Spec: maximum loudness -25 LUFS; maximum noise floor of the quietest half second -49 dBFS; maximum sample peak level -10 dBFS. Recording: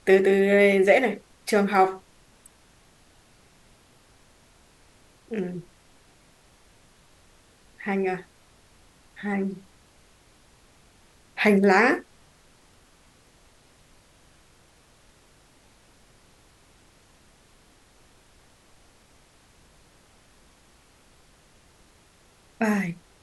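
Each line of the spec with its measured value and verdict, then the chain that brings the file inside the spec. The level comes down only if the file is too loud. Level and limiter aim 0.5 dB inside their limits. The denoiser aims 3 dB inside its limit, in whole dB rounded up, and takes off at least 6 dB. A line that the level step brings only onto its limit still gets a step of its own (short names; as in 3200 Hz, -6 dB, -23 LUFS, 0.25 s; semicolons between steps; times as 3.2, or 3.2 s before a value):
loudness -22.5 LUFS: fail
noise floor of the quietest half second -58 dBFS: OK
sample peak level -5.0 dBFS: fail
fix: gain -3 dB; limiter -10.5 dBFS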